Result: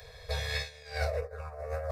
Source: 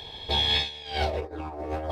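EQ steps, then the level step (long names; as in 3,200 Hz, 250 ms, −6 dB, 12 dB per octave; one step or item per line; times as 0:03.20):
elliptic band-stop filter 160–470 Hz, stop band 40 dB
high-shelf EQ 7,300 Hz +5.5 dB
phaser with its sweep stopped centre 860 Hz, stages 6
0.0 dB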